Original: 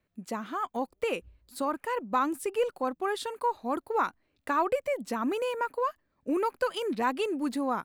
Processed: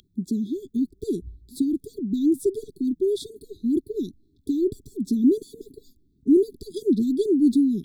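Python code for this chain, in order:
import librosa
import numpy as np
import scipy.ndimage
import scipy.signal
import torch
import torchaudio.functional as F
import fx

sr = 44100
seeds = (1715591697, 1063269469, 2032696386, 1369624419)

y = fx.tilt_shelf(x, sr, db=7.0, hz=700.0)
y = y + 10.0 ** (-36.0 / 20.0) * np.sin(2.0 * np.pi * 2900.0 * np.arange(len(y)) / sr)
y = fx.brickwall_bandstop(y, sr, low_hz=430.0, high_hz=3300.0)
y = F.gain(torch.from_numpy(y), 8.0).numpy()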